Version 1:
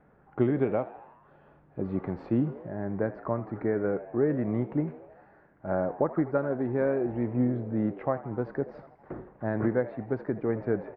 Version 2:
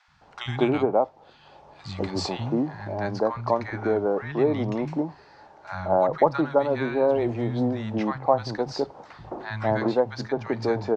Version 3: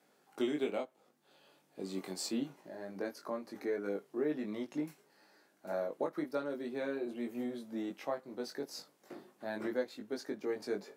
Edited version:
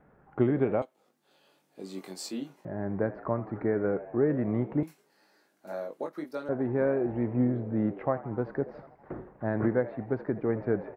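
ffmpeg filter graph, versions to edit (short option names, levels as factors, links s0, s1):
-filter_complex "[2:a]asplit=2[s0][s1];[0:a]asplit=3[s2][s3][s4];[s2]atrim=end=0.822[s5];[s0]atrim=start=0.818:end=2.652[s6];[s3]atrim=start=2.648:end=4.832[s7];[s1]atrim=start=4.828:end=6.492[s8];[s4]atrim=start=6.488[s9];[s5][s6]acrossfade=d=0.004:c1=hsin:c2=hsin[s10];[s10][s7]acrossfade=d=0.004:c1=hsin:c2=hsin[s11];[s11][s8]acrossfade=d=0.004:c1=hsin:c2=hsin[s12];[s12][s9]acrossfade=d=0.004:c1=hsin:c2=hsin"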